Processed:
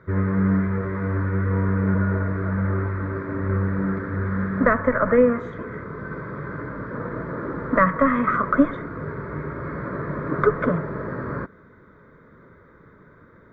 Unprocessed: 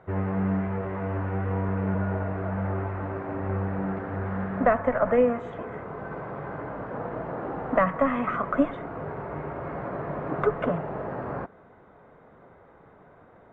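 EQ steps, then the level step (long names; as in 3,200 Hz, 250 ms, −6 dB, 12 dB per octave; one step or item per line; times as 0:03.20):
dynamic equaliser 760 Hz, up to +5 dB, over −34 dBFS, Q 0.74
phaser with its sweep stopped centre 2,800 Hz, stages 6
+6.5 dB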